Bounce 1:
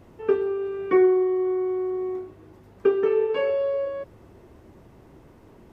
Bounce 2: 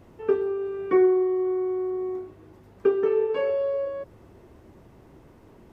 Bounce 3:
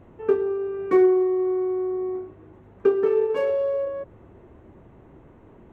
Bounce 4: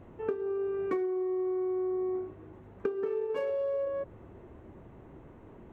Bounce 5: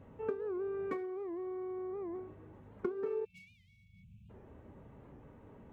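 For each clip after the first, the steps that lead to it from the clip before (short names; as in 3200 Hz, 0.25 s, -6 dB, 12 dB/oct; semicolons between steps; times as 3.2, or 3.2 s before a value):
dynamic EQ 2700 Hz, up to -4 dB, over -47 dBFS, Q 1; gain -1 dB
Wiener smoothing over 9 samples; gain +2 dB
compressor 16:1, threshold -27 dBFS, peak gain reduction 14 dB; gain -1.5 dB
spectral delete 3.25–4.3, 230–2200 Hz; notch comb 350 Hz; record warp 78 rpm, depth 160 cents; gain -3 dB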